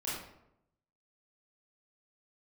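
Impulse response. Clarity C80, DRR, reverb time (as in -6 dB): 4.5 dB, -8.5 dB, 0.80 s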